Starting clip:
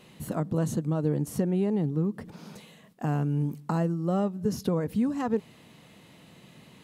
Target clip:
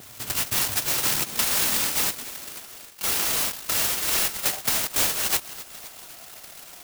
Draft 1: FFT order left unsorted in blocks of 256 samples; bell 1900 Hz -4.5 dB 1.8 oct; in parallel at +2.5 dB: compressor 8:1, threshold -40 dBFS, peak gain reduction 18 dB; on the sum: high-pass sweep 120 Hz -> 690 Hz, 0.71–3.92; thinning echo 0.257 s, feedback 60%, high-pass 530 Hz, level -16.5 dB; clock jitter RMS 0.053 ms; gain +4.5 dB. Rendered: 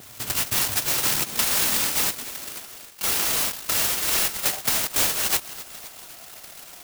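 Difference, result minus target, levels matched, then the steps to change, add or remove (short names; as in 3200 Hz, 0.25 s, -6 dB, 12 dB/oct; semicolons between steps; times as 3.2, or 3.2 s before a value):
compressor: peak gain reduction -8 dB
change: compressor 8:1, threshold -49 dBFS, peak gain reduction 26 dB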